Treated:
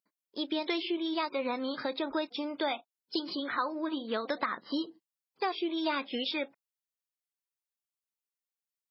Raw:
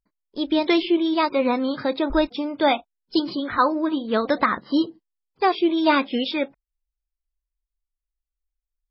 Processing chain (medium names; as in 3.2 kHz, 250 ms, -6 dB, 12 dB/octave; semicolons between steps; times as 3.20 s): high-pass 200 Hz 12 dB/octave; tilt EQ +1.5 dB/octave; compression 3:1, threshold -26 dBFS, peak gain reduction 10 dB; trim -4.5 dB